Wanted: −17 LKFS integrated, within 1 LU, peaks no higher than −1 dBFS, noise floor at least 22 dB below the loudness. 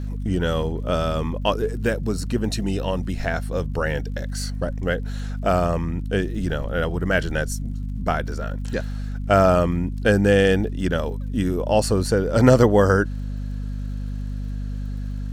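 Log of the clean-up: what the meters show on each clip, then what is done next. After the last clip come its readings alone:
crackle rate 55 per second; mains hum 50 Hz; hum harmonics up to 250 Hz; level of the hum −25 dBFS; integrated loudness −23.0 LKFS; sample peak −2.0 dBFS; target loudness −17.0 LKFS
→ click removal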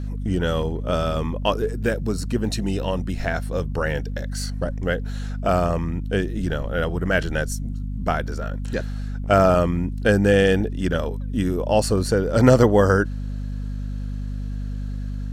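crackle rate 0.26 per second; mains hum 50 Hz; hum harmonics up to 250 Hz; level of the hum −25 dBFS
→ hum removal 50 Hz, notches 5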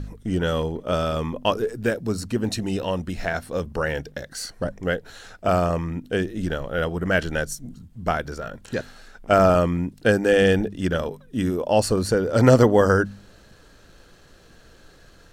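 mains hum none found; integrated loudness −23.0 LKFS; sample peak −2.5 dBFS; target loudness −17.0 LKFS
→ level +6 dB
brickwall limiter −1 dBFS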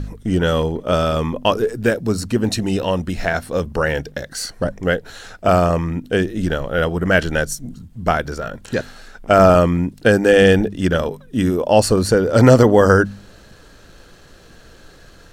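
integrated loudness −17.5 LKFS; sample peak −1.0 dBFS; background noise floor −45 dBFS

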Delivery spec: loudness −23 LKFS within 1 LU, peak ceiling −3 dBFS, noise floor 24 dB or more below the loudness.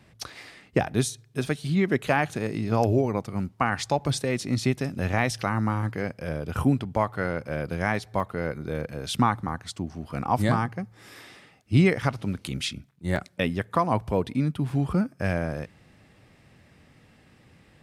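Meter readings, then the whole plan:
number of dropouts 5; longest dropout 1.3 ms; integrated loudness −27.0 LKFS; sample peak −8.5 dBFS; target loudness −23.0 LKFS
→ repair the gap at 0:05.19/0:08.20/0:09.15/0:13.16/0:14.70, 1.3 ms
level +4 dB

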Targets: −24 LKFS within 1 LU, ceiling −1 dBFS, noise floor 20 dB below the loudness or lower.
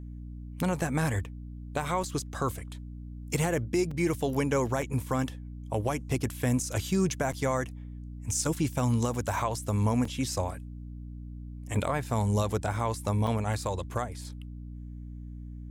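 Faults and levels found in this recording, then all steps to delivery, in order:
number of dropouts 7; longest dropout 3.7 ms; mains hum 60 Hz; hum harmonics up to 300 Hz; level of the hum −38 dBFS; integrated loudness −30.0 LKFS; sample peak −16.5 dBFS; target loudness −24.0 LKFS
→ repair the gap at 0:02.03/0:03.91/0:04.82/0:07.32/0:09.14/0:10.05/0:13.27, 3.7 ms
hum removal 60 Hz, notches 5
level +6 dB

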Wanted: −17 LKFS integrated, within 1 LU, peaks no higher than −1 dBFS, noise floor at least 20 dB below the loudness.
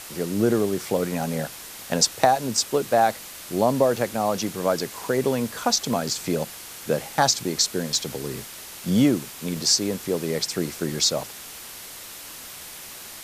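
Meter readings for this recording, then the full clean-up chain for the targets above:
number of dropouts 7; longest dropout 1.5 ms; background noise floor −40 dBFS; target noise floor −44 dBFS; integrated loudness −23.5 LKFS; sample peak −4.0 dBFS; target loudness −17.0 LKFS
→ repair the gap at 0:01.21/0:03.97/0:05.04/0:05.93/0:07.95/0:09.57/0:10.53, 1.5 ms
noise reduction from a noise print 6 dB
level +6.5 dB
brickwall limiter −1 dBFS

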